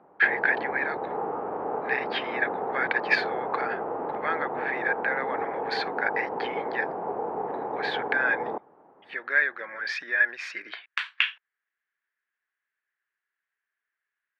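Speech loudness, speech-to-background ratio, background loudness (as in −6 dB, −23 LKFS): −28.5 LKFS, 3.5 dB, −32.0 LKFS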